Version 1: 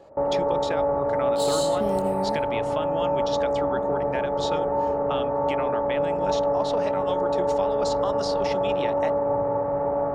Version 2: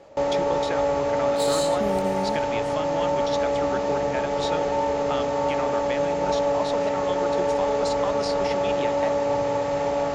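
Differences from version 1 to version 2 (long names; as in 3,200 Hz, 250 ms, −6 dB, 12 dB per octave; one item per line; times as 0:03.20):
first sound: remove low-pass filter 1,300 Hz 24 dB per octave
reverb: on, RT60 0.35 s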